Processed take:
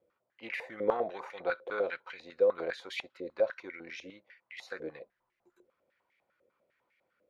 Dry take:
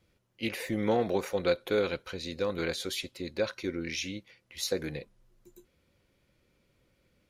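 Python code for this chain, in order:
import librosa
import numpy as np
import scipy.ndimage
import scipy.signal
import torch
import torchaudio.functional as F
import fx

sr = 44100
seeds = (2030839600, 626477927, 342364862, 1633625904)

y = fx.filter_held_bandpass(x, sr, hz=10.0, low_hz=520.0, high_hz=2100.0)
y = y * 10.0 ** (7.0 / 20.0)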